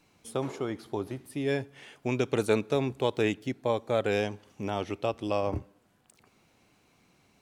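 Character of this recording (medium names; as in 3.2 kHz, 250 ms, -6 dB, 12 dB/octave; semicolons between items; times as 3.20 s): noise floor -66 dBFS; spectral tilt -5.0 dB/octave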